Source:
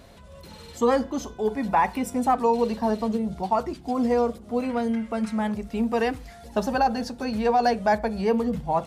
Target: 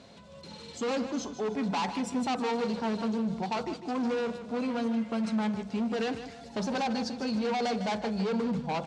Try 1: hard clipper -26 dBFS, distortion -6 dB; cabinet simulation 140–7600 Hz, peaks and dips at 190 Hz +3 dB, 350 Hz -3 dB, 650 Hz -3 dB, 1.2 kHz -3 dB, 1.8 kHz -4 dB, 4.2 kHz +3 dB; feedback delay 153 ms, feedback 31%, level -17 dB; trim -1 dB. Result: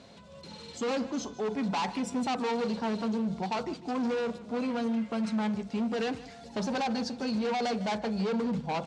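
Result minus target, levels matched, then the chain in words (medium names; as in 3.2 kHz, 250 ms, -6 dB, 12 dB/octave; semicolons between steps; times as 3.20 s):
echo-to-direct -6 dB
hard clipper -26 dBFS, distortion -6 dB; cabinet simulation 140–7600 Hz, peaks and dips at 190 Hz +3 dB, 350 Hz -3 dB, 650 Hz -3 dB, 1.2 kHz -3 dB, 1.8 kHz -4 dB, 4.2 kHz +3 dB; feedback delay 153 ms, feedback 31%, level -11 dB; trim -1 dB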